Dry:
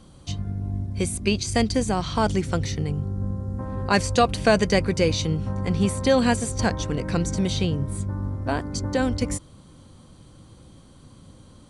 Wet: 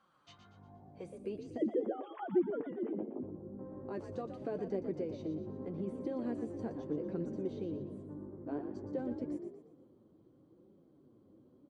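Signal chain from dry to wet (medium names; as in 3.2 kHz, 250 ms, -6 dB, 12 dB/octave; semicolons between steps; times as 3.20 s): 1.57–3.23 s: formants replaced by sine waves; peak limiter -15 dBFS, peak gain reduction 9 dB; flange 0.84 Hz, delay 5 ms, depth 4.8 ms, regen +41%; on a send: frequency-shifting echo 119 ms, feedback 45%, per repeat +53 Hz, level -9 dB; on the sum: band-pass sweep 1.3 kHz -> 360 Hz, 0.47–1.44 s; trim -2.5 dB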